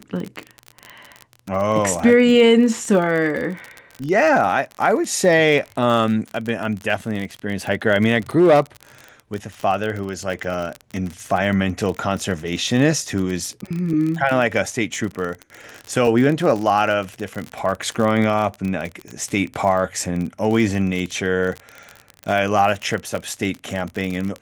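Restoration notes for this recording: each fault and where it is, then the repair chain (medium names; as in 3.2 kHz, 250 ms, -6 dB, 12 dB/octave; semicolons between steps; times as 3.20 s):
crackle 37 per s -23 dBFS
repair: de-click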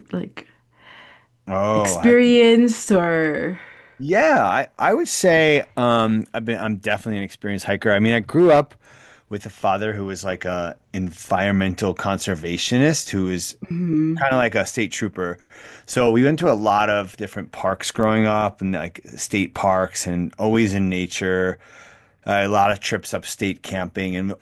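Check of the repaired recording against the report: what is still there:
nothing left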